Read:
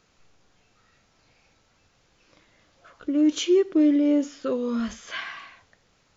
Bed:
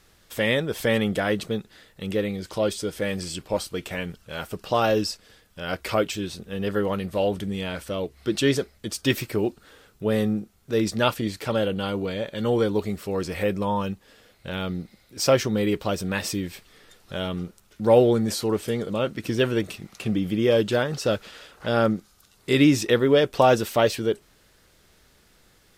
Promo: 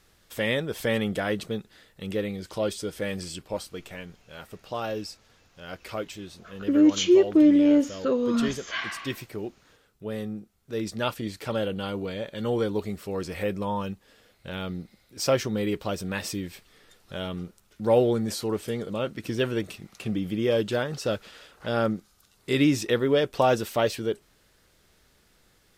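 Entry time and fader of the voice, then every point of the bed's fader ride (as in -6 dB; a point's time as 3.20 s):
3.60 s, +2.0 dB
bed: 3.21 s -3.5 dB
4.09 s -10 dB
10.28 s -10 dB
11.50 s -4 dB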